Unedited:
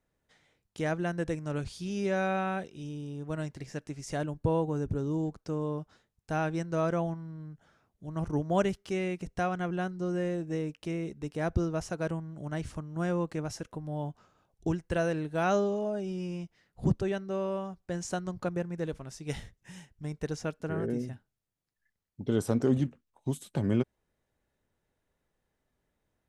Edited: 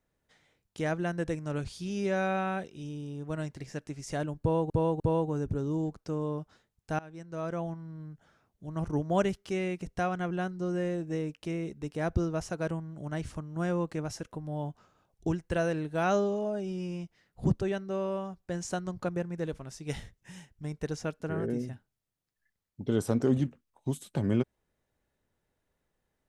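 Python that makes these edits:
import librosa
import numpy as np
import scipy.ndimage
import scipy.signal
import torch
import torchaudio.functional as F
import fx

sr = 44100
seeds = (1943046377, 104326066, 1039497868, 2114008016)

y = fx.edit(x, sr, fx.repeat(start_s=4.4, length_s=0.3, count=3),
    fx.fade_in_from(start_s=6.39, length_s=1.02, floor_db=-22.0), tone=tone)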